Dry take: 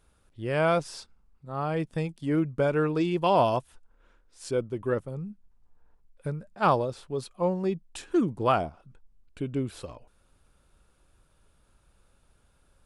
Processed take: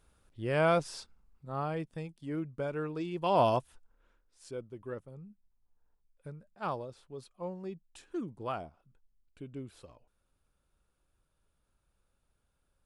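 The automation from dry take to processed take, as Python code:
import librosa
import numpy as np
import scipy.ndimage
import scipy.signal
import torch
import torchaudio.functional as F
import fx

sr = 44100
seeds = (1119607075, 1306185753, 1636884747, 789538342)

y = fx.gain(x, sr, db=fx.line((1.54, -2.5), (1.94, -10.5), (3.11, -10.5), (3.48, -1.5), (4.54, -13.0)))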